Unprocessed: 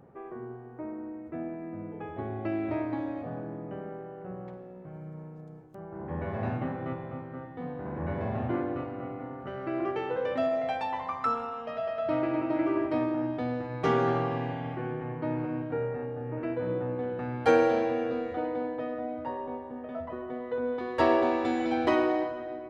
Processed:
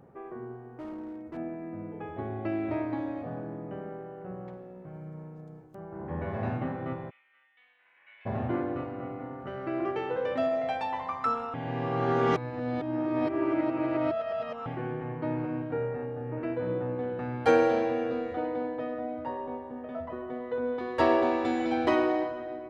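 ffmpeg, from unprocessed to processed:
ffmpeg -i in.wav -filter_complex "[0:a]asettb=1/sr,asplit=3[link_01][link_02][link_03];[link_01]atrim=end=0.664[link_04];[link_02]atrim=start=0.66:end=1.37,asetpts=PTS-STARTPTS,afade=type=in:duration=0.004:curve=qsin,afade=type=out:start_time=0.706:duration=0.004:curve=qsin,asoftclip=type=hard:threshold=-36dB[link_05];[link_03]atrim=start=1.366[link_06];[link_04][link_05]acrossfade=duration=0.004:curve1=hsin:curve2=qsin[link_07];[link_07][link_06]acrossfade=duration=0.004:curve1=qsin:curve2=hsin,asplit=3[link_08][link_09][link_10];[link_08]afade=type=out:start_time=7.09:duration=0.02[link_11];[link_09]asuperpass=centerf=2700:order=4:qfactor=2,afade=type=in:start_time=7.09:duration=0.02,afade=type=out:start_time=8.25:duration=0.02[link_12];[link_10]afade=type=in:start_time=8.25:duration=0.02[link_13];[link_11][link_12][link_13]amix=inputs=3:normalize=0,asplit=3[link_14][link_15][link_16];[link_14]atrim=end=11.542[link_17];[link_15]atrim=start=11.538:end=14.662,asetpts=PTS-STARTPTS,areverse[link_18];[link_16]atrim=start=14.658[link_19];[link_17][link_18]acrossfade=duration=0.004:curve1=hsin:curve2=hsin[link_20];[link_20][link_19]acrossfade=duration=0.004:curve1=hsin:curve2=hsin" out.wav

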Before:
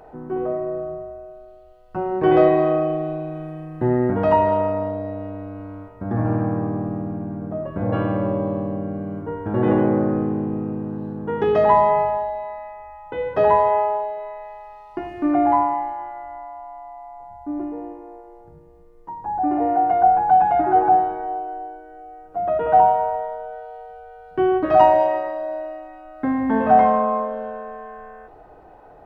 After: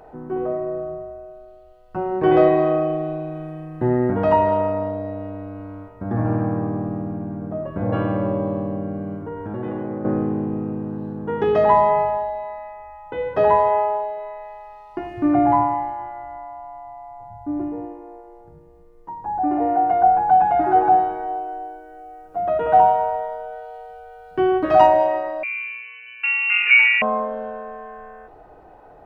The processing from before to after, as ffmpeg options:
ffmpeg -i in.wav -filter_complex "[0:a]asettb=1/sr,asplit=3[link_01][link_02][link_03];[link_01]atrim=end=9.144[link_04];[link_02]atrim=start=9.14:end=10.05,asetpts=PTS-STARTPTS,afade=type=in:duration=0.004:curve=qsin,afade=type=out:start_time=0.906:duration=0.004:curve=qsin,acompressor=threshold=-27dB:ratio=3:attack=3.2:release=140:knee=1:detection=peak[link_05];[link_03]atrim=start=10.046[link_06];[link_04][link_05]acrossfade=duration=0.004:curve1=hsin:curve2=qsin[link_07];[link_07][link_06]acrossfade=duration=0.004:curve1=qsin:curve2=hsin,asettb=1/sr,asplit=3[link_08][link_09][link_10];[link_08]atrim=end=15.164[link_11];[link_09]atrim=start=15.16:end=17.86,asetpts=PTS-STARTPTS,afade=type=in:duration=0.004:curve=qsin,afade=type=out:start_time=2.696:duration=0.004:curve=qsin,equalizer=frequency=120:width=1.5:gain=15[link_12];[link_10]atrim=start=17.856[link_13];[link_11][link_12]acrossfade=duration=0.004:curve1=hsin:curve2=qsin[link_14];[link_14][link_13]acrossfade=duration=0.004:curve1=qsin:curve2=hsin,asettb=1/sr,asplit=3[link_15][link_16][link_17];[link_15]atrim=end=20.614[link_18];[link_16]atrim=start=20.61:end=24.87,asetpts=PTS-STARTPTS,afade=type=in:duration=0.004:curve=qsin,afade=type=out:start_time=4.256:duration=0.004:curve=qsin,highshelf=frequency=3300:gain=8[link_19];[link_17]atrim=start=24.866[link_20];[link_18][link_19]acrossfade=duration=0.004:curve1=hsin:curve2=qsin[link_21];[link_21][link_20]acrossfade=duration=0.004:curve1=qsin:curve2=hsin,asettb=1/sr,asplit=3[link_22][link_23][link_24];[link_22]atrim=end=25.434[link_25];[link_23]atrim=start=25.43:end=27.02,asetpts=PTS-STARTPTS,afade=type=in:duration=0.004:curve=qsin,afade=type=out:start_time=1.586:duration=0.004:curve=qsin,lowpass=frequency=2600:width_type=q:width=0.5098,lowpass=frequency=2600:width_type=q:width=0.6013,lowpass=frequency=2600:width_type=q:width=0.9,lowpass=frequency=2600:width_type=q:width=2.563,afreqshift=-3000[link_26];[link_24]atrim=start=27.016[link_27];[link_25][link_26]acrossfade=duration=0.004:curve1=hsin:curve2=qsin[link_28];[link_28][link_27]acrossfade=duration=0.004:curve1=qsin:curve2=hsin" out.wav

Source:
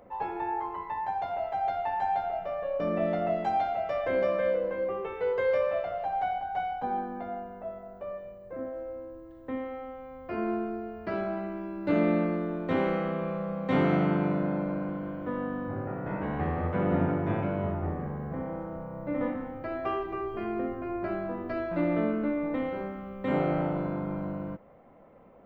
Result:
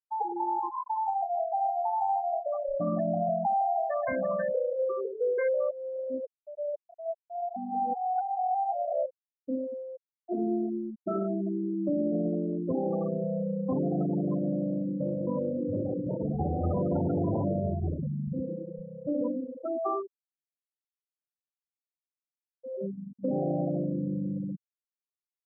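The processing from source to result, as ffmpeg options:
ffmpeg -i in.wav -filter_complex "[0:a]asettb=1/sr,asplit=3[link_01][link_02][link_03];[link_01]atrim=end=2.534[link_04];[link_02]atrim=start=2.53:end=4.55,asetpts=PTS-STARTPTS,afade=type=in:duration=0.004:curve=qsin,afade=type=out:start_time=2.016:duration=0.004:curve=qsin,aecho=1:1:1.1:0.78,atrim=end_sample=89082[link_05];[link_03]atrim=start=4.546[link_06];[link_04][link_05]acrossfade=duration=0.004:curve1=hsin:curve2=qsin[link_07];[link_07][link_06]acrossfade=duration=0.004:curve1=qsin:curve2=hsin,asettb=1/sr,asplit=3[link_08][link_09][link_10];[link_08]atrim=end=10.264[link_11];[link_09]atrim=start=10.26:end=12.12,asetpts=PTS-STARTPTS,afade=type=in:duration=0.004:curve=qsin,afade=type=out:start_time=1.856:duration=0.004:curve=qsin,asplit=2[link_12][link_13];[link_13]adelay=31,volume=-5.5dB[link_14];[link_12][link_14]amix=inputs=2:normalize=0,atrim=end_sample=82026[link_15];[link_10]atrim=start=12.116[link_16];[link_11][link_15]acrossfade=duration=0.004:curve1=hsin:curve2=qsin[link_17];[link_17][link_16]acrossfade=duration=0.004:curve1=qsin:curve2=hsin,asplit=2[link_18][link_19];[link_19]afade=type=in:start_time=14.64:duration=0.01,afade=type=out:start_time=15.24:duration=0.01,aecho=0:1:360|720|1080|1440|1800|2160|2520|2880|3240|3600|3960|4320:0.944061|0.755249|0.604199|0.483359|0.386687|0.30935|0.24748|0.197984|0.158387|0.12671|0.101368|0.0810942[link_20];[link_18][link_20]amix=inputs=2:normalize=0,asplit=7[link_21][link_22][link_23][link_24][link_25][link_26][link_27];[link_21]atrim=end=5.712[link_28];[link_22]atrim=start=5.708:end=9.062,asetpts=PTS-STARTPTS,areverse[link_29];[link_23]atrim=start=9.058:end=16.642[link_30];[link_24]atrim=start=16.638:end=17.602,asetpts=PTS-STARTPTS,volume=11.5dB[link_31];[link_25]atrim=start=17.598:end=20.19,asetpts=PTS-STARTPTS,afade=type=out:start_time=2.332:duration=0.26:silence=0.0944061[link_32];[link_26]atrim=start=20.19:end=22.58,asetpts=PTS-STARTPTS,volume=-20.5dB[link_33];[link_27]atrim=start=22.58,asetpts=PTS-STARTPTS,afade=type=in:duration=0.26:silence=0.0944061[link_34];[link_28][link_29]acrossfade=duration=0.004:curve1=hsin:curve2=hsin[link_35];[link_35][link_30]acrossfade=duration=0.004:curve1=hsin:curve2=hsin[link_36];[link_36][link_31]acrossfade=duration=0.004:curve1=hsin:curve2=hsin[link_37];[link_32][link_33][link_34]concat=n=3:v=0:a=1[link_38];[link_37][link_38]acrossfade=duration=0.004:curve1=hsin:curve2=hsin,alimiter=limit=-21dB:level=0:latency=1:release=18,afftfilt=real='re*gte(hypot(re,im),0.0891)':imag='im*gte(hypot(re,im),0.0891)':win_size=1024:overlap=0.75,acompressor=threshold=-34dB:ratio=2,volume=5.5dB" out.wav

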